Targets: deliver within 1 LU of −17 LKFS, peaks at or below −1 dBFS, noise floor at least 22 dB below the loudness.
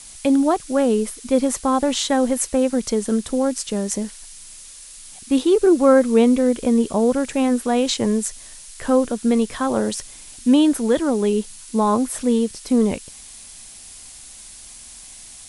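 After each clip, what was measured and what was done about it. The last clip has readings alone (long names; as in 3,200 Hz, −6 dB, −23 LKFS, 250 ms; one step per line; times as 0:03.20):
background noise floor −41 dBFS; target noise floor −42 dBFS; integrated loudness −19.5 LKFS; sample peak −2.5 dBFS; target loudness −17.0 LKFS
→ noise reduction from a noise print 6 dB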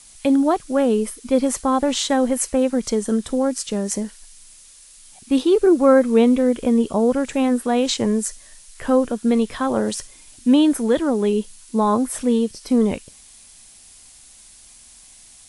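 background noise floor −47 dBFS; integrated loudness −19.5 LKFS; sample peak −2.5 dBFS; target loudness −17.0 LKFS
→ level +2.5 dB
brickwall limiter −1 dBFS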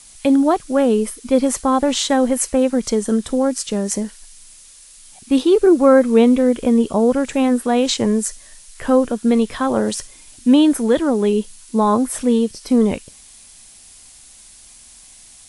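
integrated loudness −17.0 LKFS; sample peak −1.0 dBFS; background noise floor −45 dBFS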